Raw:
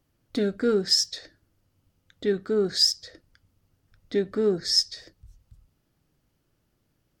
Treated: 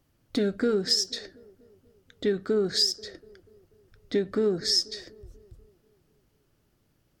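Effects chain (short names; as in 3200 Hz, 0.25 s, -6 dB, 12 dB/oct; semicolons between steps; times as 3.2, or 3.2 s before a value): compressor 4:1, threshold -24 dBFS, peak gain reduction 8 dB; band-limited delay 0.243 s, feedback 56%, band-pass 470 Hz, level -18 dB; gain +2.5 dB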